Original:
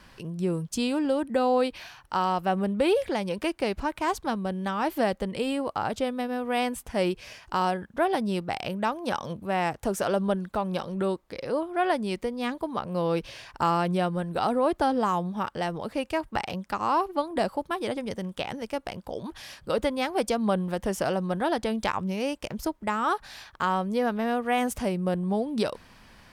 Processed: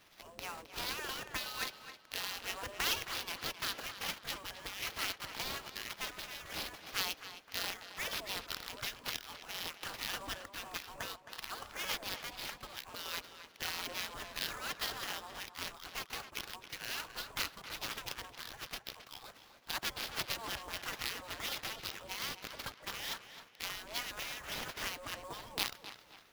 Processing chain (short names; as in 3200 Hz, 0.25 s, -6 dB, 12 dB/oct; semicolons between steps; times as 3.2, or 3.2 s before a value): spectral gate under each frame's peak -25 dB weak; sample-rate reducer 8600 Hz, jitter 20%; on a send: tape echo 0.266 s, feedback 39%, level -10.5 dB, low-pass 4300 Hz; on the sum: gain +5 dB